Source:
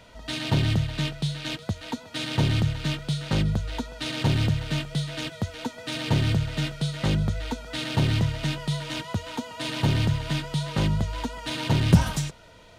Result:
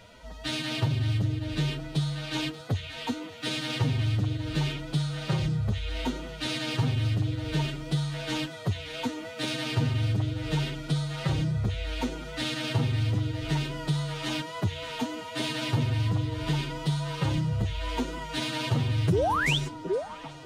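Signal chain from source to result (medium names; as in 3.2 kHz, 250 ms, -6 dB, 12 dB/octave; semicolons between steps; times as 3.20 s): dynamic bell 100 Hz, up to +6 dB, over -35 dBFS, Q 0.86; compression 5:1, threshold -24 dBFS, peak gain reduction 16 dB; painted sound rise, 11.95–12.24 s, 330–3800 Hz -24 dBFS; repeats whose band climbs or falls 480 ms, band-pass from 370 Hz, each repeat 1.4 oct, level -0.5 dB; time stretch by phase-locked vocoder 1.6×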